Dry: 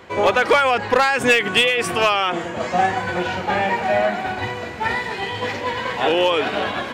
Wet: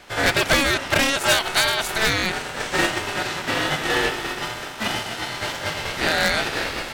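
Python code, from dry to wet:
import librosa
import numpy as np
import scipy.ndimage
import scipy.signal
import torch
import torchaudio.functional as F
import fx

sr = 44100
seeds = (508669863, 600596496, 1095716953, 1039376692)

y = fx.spec_flatten(x, sr, power=0.59)
y = y * np.sin(2.0 * np.pi * 1100.0 * np.arange(len(y)) / sr)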